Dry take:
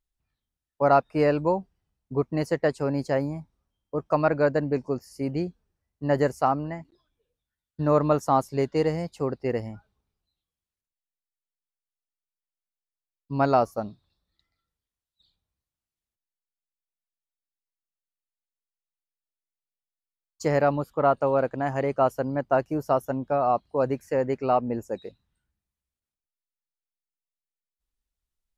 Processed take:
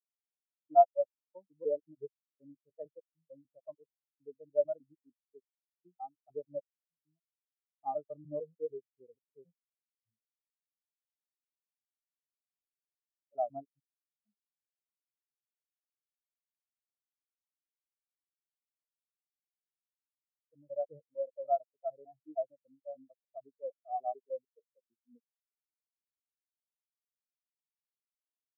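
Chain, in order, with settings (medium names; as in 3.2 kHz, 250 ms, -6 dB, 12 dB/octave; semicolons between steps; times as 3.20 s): slices played last to first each 150 ms, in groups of 4; companded quantiser 4-bit; spectral contrast expander 4:1; trim -6 dB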